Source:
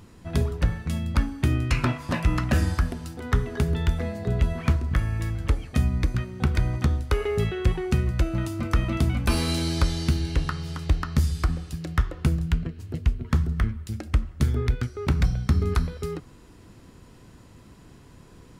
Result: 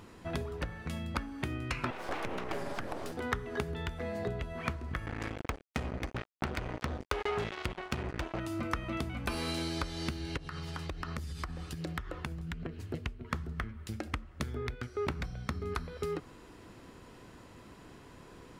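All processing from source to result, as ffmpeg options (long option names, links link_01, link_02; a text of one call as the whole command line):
ffmpeg -i in.wav -filter_complex "[0:a]asettb=1/sr,asplit=3[link_01][link_02][link_03];[link_01]atrim=end=1.904[link_04];[link_02]atrim=start=1.9:end=3.12,asetpts=PTS-STARTPTS,afade=type=in:duration=0.004:curve=qsin,afade=type=out:start_time=1.216:duration=0.004:curve=qsin,equalizer=frequency=470:width_type=o:width=0.84:gain=13,acompressor=threshold=-28dB:ratio=2:attack=3.2:release=140:knee=1:detection=peak,aeval=exprs='abs(val(0))':channel_layout=same[link_05];[link_03]atrim=start=3.116[link_06];[link_04][link_05]acrossfade=duration=0.004:curve1=hsin:curve2=qsin[link_07];[link_07][link_06]acrossfade=duration=0.004:curve1=qsin:curve2=hsin,asettb=1/sr,asplit=3[link_08][link_09][link_10];[link_08]atrim=end=5.064[link_11];[link_09]atrim=start=5.06:end=8.4,asetpts=PTS-STARTPTS,afade=type=in:duration=0.004:curve=qsin,afade=type=out:start_time=3.336:duration=0.004:curve=qsin,lowpass=7500,acrusher=bits=3:mix=0:aa=0.5[link_12];[link_10]atrim=start=8.396[link_13];[link_11][link_12]acrossfade=duration=0.004:curve1=hsin:curve2=qsin[link_14];[link_14][link_13]acrossfade=duration=0.004:curve1=qsin:curve2=hsin,asettb=1/sr,asplit=3[link_15][link_16][link_17];[link_15]atrim=end=10.374[link_18];[link_16]atrim=start=10.37:end=12.89,asetpts=PTS-STARTPTS,afade=type=in:duration=0.004:curve=qsin,afade=type=out:start_time=2.516:duration=0.004:curve=qsin,acompressor=threshold=-31dB:ratio=6:attack=3.2:release=140:knee=1:detection=peak,aphaser=in_gain=1:out_gain=1:delay=1.3:decay=0.25:speed=1.3:type=triangular[link_19];[link_17]atrim=start=12.886[link_20];[link_18][link_19]acrossfade=duration=0.004:curve1=hsin:curve2=qsin[link_21];[link_21][link_20]acrossfade=duration=0.004:curve1=qsin:curve2=hsin,acompressor=threshold=-29dB:ratio=6,bass=frequency=250:gain=-9,treble=frequency=4000:gain=-6,volume=2dB" out.wav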